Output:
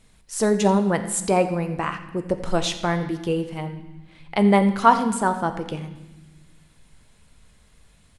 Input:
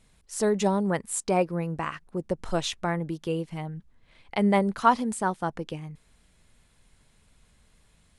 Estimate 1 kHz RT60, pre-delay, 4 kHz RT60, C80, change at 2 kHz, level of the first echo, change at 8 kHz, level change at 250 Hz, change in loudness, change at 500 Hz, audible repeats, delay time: 1.0 s, 9 ms, 1.1 s, 12.0 dB, +5.0 dB, -18.0 dB, +5.0 dB, +5.5 dB, +5.5 dB, +5.0 dB, 1, 86 ms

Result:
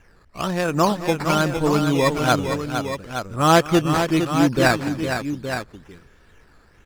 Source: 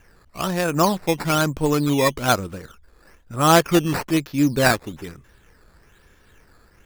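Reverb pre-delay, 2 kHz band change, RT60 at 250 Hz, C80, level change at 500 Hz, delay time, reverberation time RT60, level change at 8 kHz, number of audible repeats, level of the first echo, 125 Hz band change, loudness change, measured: no reverb, +1.0 dB, no reverb, no reverb, +1.0 dB, 210 ms, no reverb, -3.0 dB, 3, -18.5 dB, +1.0 dB, -0.5 dB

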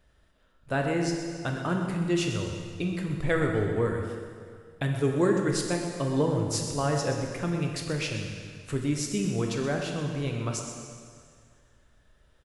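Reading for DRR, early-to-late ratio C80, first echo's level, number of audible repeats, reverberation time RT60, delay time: 1.5 dB, 4.0 dB, -11.5 dB, 1, 2.1 s, 125 ms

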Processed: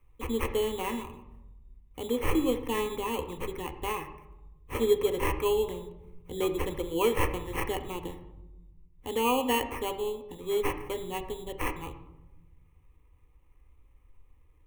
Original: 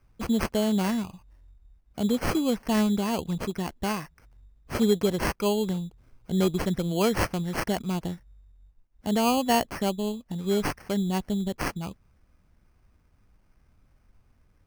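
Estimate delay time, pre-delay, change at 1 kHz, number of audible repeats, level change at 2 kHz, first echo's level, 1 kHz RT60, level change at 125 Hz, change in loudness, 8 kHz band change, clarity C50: no echo, 4 ms, -2.0 dB, no echo, -2.5 dB, no echo, 0.90 s, -9.0 dB, -3.5 dB, -4.5 dB, 11.0 dB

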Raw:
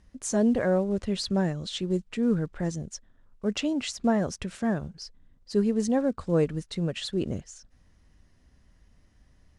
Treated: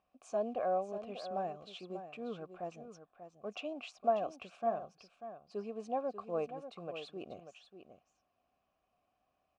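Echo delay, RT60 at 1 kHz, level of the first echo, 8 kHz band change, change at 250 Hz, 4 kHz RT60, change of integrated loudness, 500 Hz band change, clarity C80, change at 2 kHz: 590 ms, no reverb, -10.5 dB, under -20 dB, -20.5 dB, no reverb, -11.5 dB, -8.0 dB, no reverb, -13.5 dB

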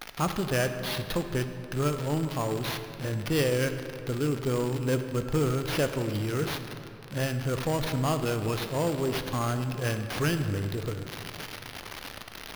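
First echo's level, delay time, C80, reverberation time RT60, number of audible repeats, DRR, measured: no echo, no echo, 9.0 dB, 2.7 s, no echo, 7.5 dB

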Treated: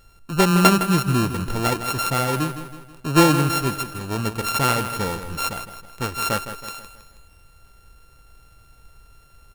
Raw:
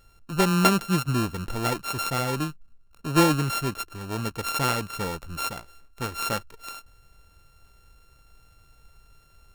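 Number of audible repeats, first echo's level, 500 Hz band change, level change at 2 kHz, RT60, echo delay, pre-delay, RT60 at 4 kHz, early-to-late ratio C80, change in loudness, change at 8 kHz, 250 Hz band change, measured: 4, -11.0 dB, +5.0 dB, +5.0 dB, no reverb, 161 ms, no reverb, no reverb, no reverb, +5.0 dB, +5.0 dB, +5.0 dB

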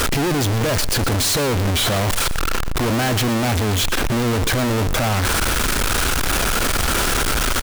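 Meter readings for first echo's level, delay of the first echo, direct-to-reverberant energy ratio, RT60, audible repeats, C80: -15.5 dB, 116 ms, no reverb, no reverb, 1, no reverb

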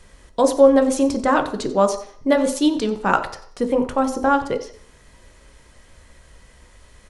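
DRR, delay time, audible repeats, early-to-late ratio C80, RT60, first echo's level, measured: 6.0 dB, 91 ms, 1, 13.5 dB, 0.55 s, -16.5 dB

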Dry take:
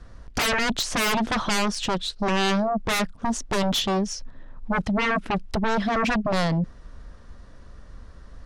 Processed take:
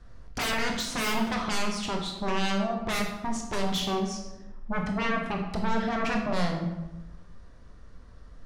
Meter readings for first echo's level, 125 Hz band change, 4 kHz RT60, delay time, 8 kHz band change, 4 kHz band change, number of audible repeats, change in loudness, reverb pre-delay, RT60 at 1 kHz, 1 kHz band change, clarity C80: no echo, -4.5 dB, 0.65 s, no echo, -5.5 dB, -5.5 dB, no echo, -5.0 dB, 17 ms, 0.95 s, -5.0 dB, 7.5 dB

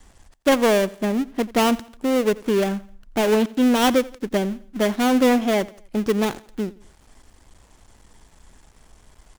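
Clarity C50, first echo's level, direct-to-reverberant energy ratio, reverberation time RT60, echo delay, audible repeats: no reverb, -21.0 dB, no reverb, no reverb, 86 ms, 2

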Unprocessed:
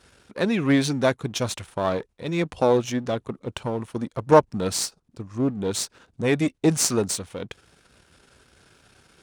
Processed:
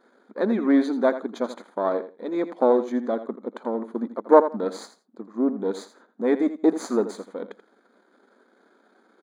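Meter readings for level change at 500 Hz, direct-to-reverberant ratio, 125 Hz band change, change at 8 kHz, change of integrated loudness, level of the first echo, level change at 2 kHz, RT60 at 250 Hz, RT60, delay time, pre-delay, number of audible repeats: +1.0 dB, no reverb, under -15 dB, under -15 dB, 0.0 dB, -12.5 dB, -6.0 dB, no reverb, no reverb, 83 ms, no reverb, 2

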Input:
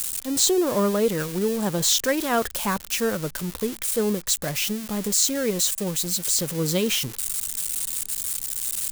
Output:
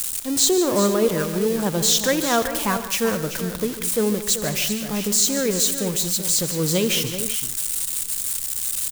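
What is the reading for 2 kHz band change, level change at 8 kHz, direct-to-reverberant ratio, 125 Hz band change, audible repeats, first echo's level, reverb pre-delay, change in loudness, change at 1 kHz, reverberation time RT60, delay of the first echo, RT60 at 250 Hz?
+2.5 dB, +2.5 dB, no reverb, +2.5 dB, 5, -19.0 dB, no reverb, +2.5 dB, +2.5 dB, no reverb, 80 ms, no reverb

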